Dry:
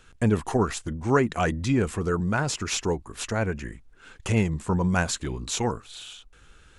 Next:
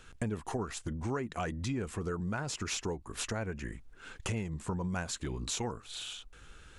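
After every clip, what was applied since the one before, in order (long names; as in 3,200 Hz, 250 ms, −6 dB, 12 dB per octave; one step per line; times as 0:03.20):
downward compressor 4 to 1, threshold −34 dBFS, peak gain reduction 15.5 dB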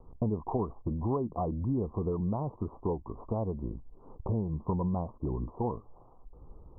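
Butterworth low-pass 1,100 Hz 96 dB per octave
level +4.5 dB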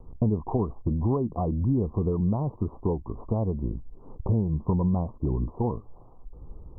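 low-shelf EQ 390 Hz +8 dB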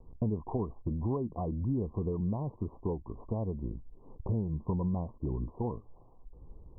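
elliptic low-pass filter 1,100 Hz, stop band 50 dB
level −6.5 dB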